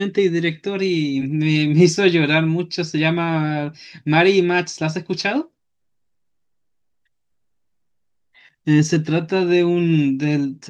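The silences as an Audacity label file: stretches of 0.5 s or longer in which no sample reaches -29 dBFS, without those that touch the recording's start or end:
5.420000	8.670000	silence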